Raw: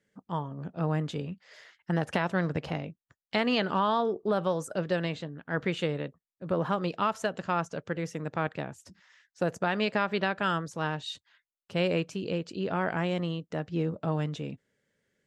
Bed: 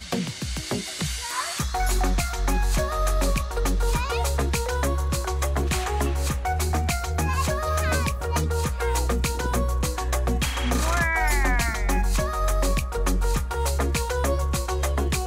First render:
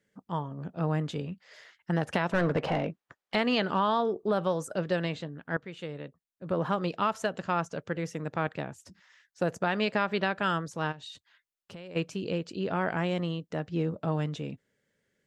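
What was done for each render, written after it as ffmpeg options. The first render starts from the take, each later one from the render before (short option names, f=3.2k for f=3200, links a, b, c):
-filter_complex "[0:a]asettb=1/sr,asplit=3[a][b][c];[a]atrim=end=2.324[d];[b]atrim=start=2.32:end=3.35,asetpts=PTS-STARTPTS,afade=t=in:d=0.004:c=qsin,afade=t=out:st=1.026:d=0.004:c=qsin,asplit=2[e][f];[f]highpass=f=720:p=1,volume=23dB,asoftclip=type=tanh:threshold=-15dB[g];[e][g]amix=inputs=2:normalize=0,lowpass=f=1k:p=1,volume=-6dB[h];[c]atrim=start=3.346[i];[d][h]acrossfade=d=0.004:c1=hsin:c2=qsin[j];[j][i]acrossfade=d=0.004:c1=qsin:c2=hsin,asplit=3[k][l][m];[k]afade=t=out:st=10.91:d=0.02[n];[l]acompressor=threshold=-40dB:ratio=10:attack=3.2:release=140:knee=1:detection=peak,afade=t=in:st=10.91:d=0.02,afade=t=out:st=11.95:d=0.02[o];[m]afade=t=in:st=11.95:d=0.02[p];[n][o][p]amix=inputs=3:normalize=0,asplit=2[q][r];[q]atrim=end=5.57,asetpts=PTS-STARTPTS,afade=t=out:st=5.566:d=0.004:c=hsin:silence=0.141254[s];[r]atrim=start=5.57,asetpts=PTS-STARTPTS,afade=t=in:d=1.1:silence=0.141254[t];[s][t]concat=n=2:v=0:a=1"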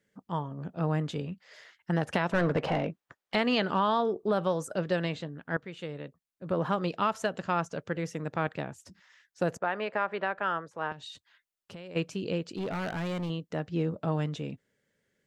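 -filter_complex "[0:a]asettb=1/sr,asplit=3[a][b][c];[a]atrim=end=9.574[d];[b]atrim=start=9.57:end=10.92,asetpts=PTS-STARTPTS,afade=t=in:d=0.004:c=qsin,afade=t=out:st=1.346:d=0.004:c=qsin,acrossover=split=390 2300:gain=0.224 1 0.141[e][f][g];[e][f][g]amix=inputs=3:normalize=0[h];[c]atrim=start=10.916[i];[d][h]acrossfade=d=0.004:c1=hsin:c2=qsin[j];[j][i]acrossfade=d=0.004:c1=qsin:c2=hsin,asettb=1/sr,asplit=3[k][l][m];[k]atrim=end=12.434[n];[l]atrim=start=12.43:end=13.3,asetpts=PTS-STARTPTS,afade=t=in:d=0.004:c=qsin,afade=t=out:st=0.866:d=0.004:c=qsin,volume=29.5dB,asoftclip=hard,volume=-29.5dB[o];[m]atrim=start=13.296[p];[n][o]acrossfade=d=0.004:c1=hsin:c2=qsin[q];[q][p]acrossfade=d=0.004:c1=qsin:c2=hsin"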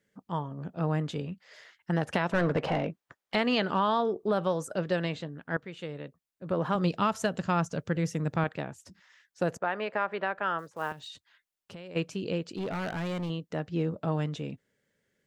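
-filter_complex "[0:a]asettb=1/sr,asplit=3[a][b][c];[a]atrim=end=6.754[d];[b]atrim=start=6.75:end=8.44,asetpts=PTS-STARTPTS,afade=t=in:d=0.004:c=qsin,afade=t=out:st=1.686:d=0.004:c=qsin,bass=f=250:g=8,treble=f=4k:g=5[e];[c]atrim=start=8.436[f];[d][e]acrossfade=d=0.004:c1=hsin:c2=qsin[g];[g][f]acrossfade=d=0.004:c1=qsin:c2=hsin,asplit=3[h][i][j];[h]afade=t=out:st=10.58:d=0.02[k];[i]acrusher=bits=6:mode=log:mix=0:aa=0.000001,afade=t=in:st=10.58:d=0.02,afade=t=out:st=11.07:d=0.02[l];[j]afade=t=in:st=11.07:d=0.02[m];[k][l][m]amix=inputs=3:normalize=0"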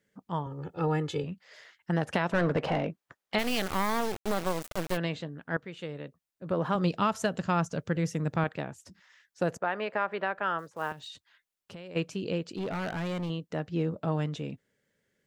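-filter_complex "[0:a]asettb=1/sr,asplit=3[a][b][c];[a]atrim=end=0.464[d];[b]atrim=start=0.46:end=1.24,asetpts=PTS-STARTPTS,afade=t=in:d=0.004:c=qsin,afade=t=out:st=0.776:d=0.004:c=qsin,aecho=1:1:2.3:0.96,atrim=end_sample=34398[e];[c]atrim=start=1.236[f];[d][e]acrossfade=d=0.004:c1=hsin:c2=qsin[g];[g][f]acrossfade=d=0.004:c1=qsin:c2=hsin,asplit=3[h][i][j];[h]afade=t=out:st=3.38:d=0.02[k];[i]acrusher=bits=3:dc=4:mix=0:aa=0.000001,afade=t=in:st=3.38:d=0.02,afade=t=out:st=4.96:d=0.02[l];[j]afade=t=in:st=4.96:d=0.02[m];[k][l][m]amix=inputs=3:normalize=0"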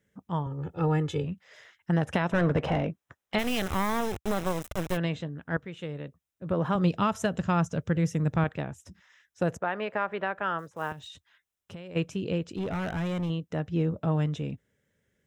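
-af "equalizer=f=68:t=o:w=1.9:g=11.5,bandreject=f=4.5k:w=5.3"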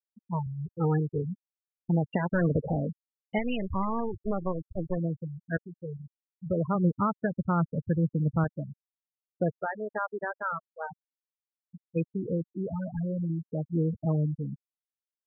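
-af "afftfilt=real='re*gte(hypot(re,im),0.1)':imag='im*gte(hypot(re,im),0.1)':win_size=1024:overlap=0.75,adynamicequalizer=threshold=0.00501:dfrequency=720:dqfactor=2.6:tfrequency=720:tqfactor=2.6:attack=5:release=100:ratio=0.375:range=3:mode=cutabove:tftype=bell"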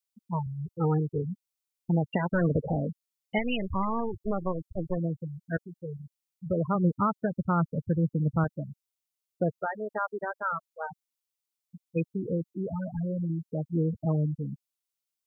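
-af "highshelf=f=2.4k:g=9,bandreject=f=1.7k:w=6.9"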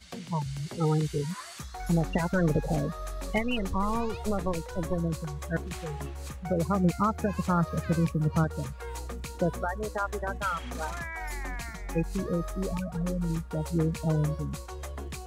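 -filter_complex "[1:a]volume=-14dB[a];[0:a][a]amix=inputs=2:normalize=0"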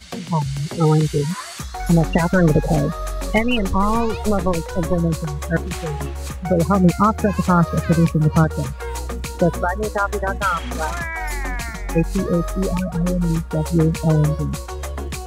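-af "volume=10.5dB"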